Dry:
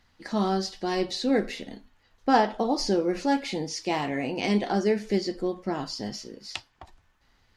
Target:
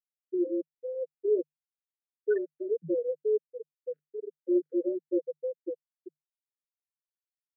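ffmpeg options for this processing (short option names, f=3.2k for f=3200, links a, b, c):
-af "afftfilt=real='re*gte(hypot(re,im),0.316)':imag='im*gte(hypot(re,im),0.316)':win_size=1024:overlap=0.75,afreqshift=150,asuperstop=centerf=870:order=12:qfactor=0.87"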